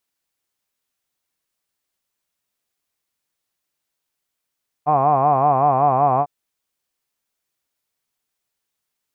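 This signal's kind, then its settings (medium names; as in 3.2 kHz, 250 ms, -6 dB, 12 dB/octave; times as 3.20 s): formant-synthesis vowel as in hod, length 1.40 s, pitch 143 Hz, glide -1 st, vibrato depth 1.25 st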